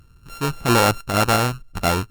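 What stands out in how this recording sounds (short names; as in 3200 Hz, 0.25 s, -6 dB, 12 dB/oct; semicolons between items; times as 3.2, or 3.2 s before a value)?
a buzz of ramps at a fixed pitch in blocks of 32 samples; random-step tremolo 4.4 Hz; Opus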